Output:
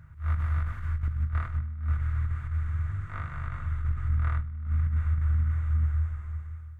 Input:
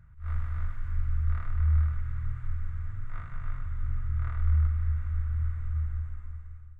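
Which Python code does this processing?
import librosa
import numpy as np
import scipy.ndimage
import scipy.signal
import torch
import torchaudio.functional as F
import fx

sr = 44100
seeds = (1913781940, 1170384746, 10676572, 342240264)

y = fx.over_compress(x, sr, threshold_db=-28.0, ratio=-0.5)
y = scipy.signal.sosfilt(scipy.signal.butter(2, 53.0, 'highpass', fs=sr, output='sos'), y)
y = fx.hum_notches(y, sr, base_hz=60, count=2)
y = y * 10.0 ** (6.0 / 20.0)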